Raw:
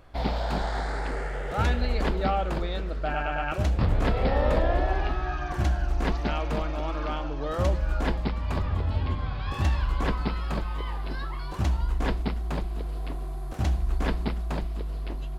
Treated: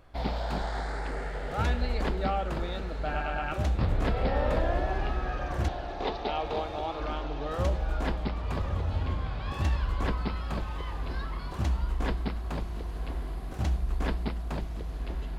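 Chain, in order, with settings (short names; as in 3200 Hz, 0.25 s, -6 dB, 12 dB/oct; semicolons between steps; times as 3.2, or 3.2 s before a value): 5.68–7 speaker cabinet 340–5300 Hz, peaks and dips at 430 Hz +9 dB, 790 Hz +9 dB, 1600 Hz -9 dB, 3700 Hz +9 dB; diffused feedback echo 1.115 s, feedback 45%, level -11 dB; gain -3.5 dB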